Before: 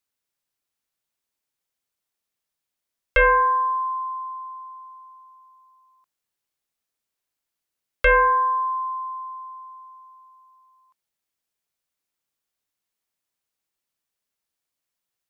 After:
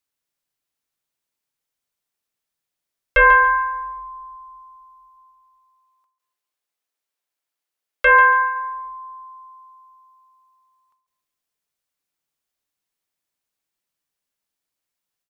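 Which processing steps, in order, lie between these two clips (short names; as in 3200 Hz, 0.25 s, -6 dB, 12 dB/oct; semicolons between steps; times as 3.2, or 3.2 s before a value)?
5.17–8.42 tone controls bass -13 dB, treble -2 dB; reverb RT60 1.4 s, pre-delay 7 ms, DRR 13 dB; dynamic EQ 1200 Hz, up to +6 dB, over -29 dBFS, Q 0.96; feedback echo 0.141 s, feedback 23%, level -10 dB; ending taper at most 110 dB/s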